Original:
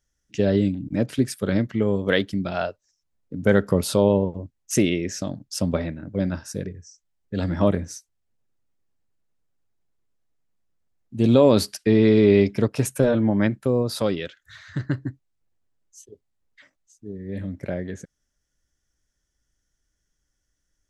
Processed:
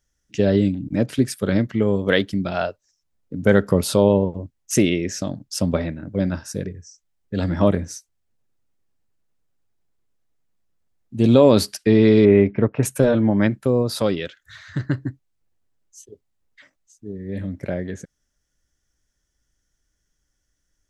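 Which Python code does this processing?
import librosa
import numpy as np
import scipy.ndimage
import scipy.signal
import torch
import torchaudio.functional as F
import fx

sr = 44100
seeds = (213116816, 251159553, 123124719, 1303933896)

y = fx.lowpass(x, sr, hz=2300.0, slope=24, at=(12.25, 12.83))
y = y * 10.0 ** (2.5 / 20.0)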